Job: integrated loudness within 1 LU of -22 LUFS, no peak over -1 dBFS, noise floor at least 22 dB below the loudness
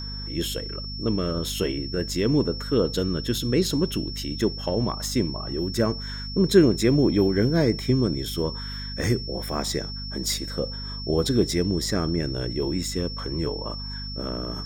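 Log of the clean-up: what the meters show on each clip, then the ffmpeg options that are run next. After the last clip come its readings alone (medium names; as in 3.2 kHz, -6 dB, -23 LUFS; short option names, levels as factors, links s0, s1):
hum 50 Hz; highest harmonic 250 Hz; hum level -32 dBFS; steady tone 5.4 kHz; tone level -35 dBFS; loudness -25.0 LUFS; peak level -5.5 dBFS; loudness target -22.0 LUFS
-> -af "bandreject=f=50:t=h:w=6,bandreject=f=100:t=h:w=6,bandreject=f=150:t=h:w=6,bandreject=f=200:t=h:w=6,bandreject=f=250:t=h:w=6"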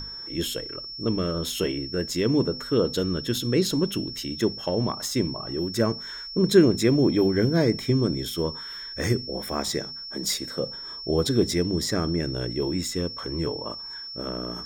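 hum not found; steady tone 5.4 kHz; tone level -35 dBFS
-> -af "bandreject=f=5400:w=30"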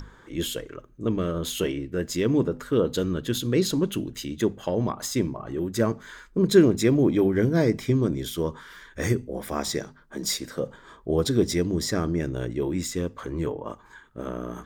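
steady tone not found; loudness -26.0 LUFS; peak level -6.0 dBFS; loudness target -22.0 LUFS
-> -af "volume=1.58"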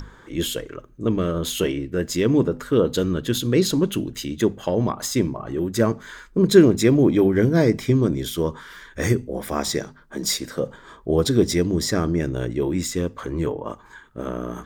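loudness -22.0 LUFS; peak level -2.0 dBFS; noise floor -49 dBFS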